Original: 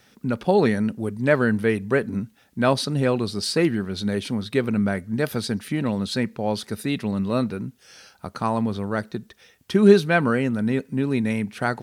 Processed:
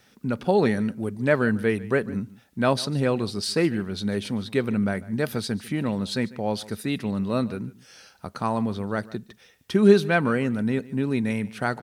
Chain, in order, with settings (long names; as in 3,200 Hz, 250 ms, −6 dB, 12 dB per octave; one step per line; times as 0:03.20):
single-tap delay 147 ms −20 dB
level −2 dB